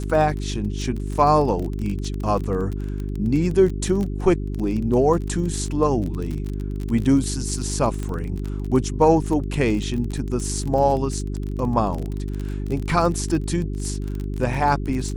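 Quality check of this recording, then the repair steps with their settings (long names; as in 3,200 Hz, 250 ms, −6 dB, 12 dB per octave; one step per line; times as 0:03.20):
surface crackle 25 per second −26 dBFS
mains hum 50 Hz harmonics 8 −27 dBFS
0:08.03: click −17 dBFS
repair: click removal
hum removal 50 Hz, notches 8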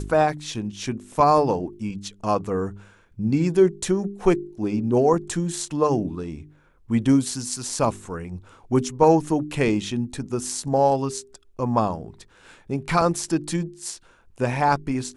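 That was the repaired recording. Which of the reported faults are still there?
none of them is left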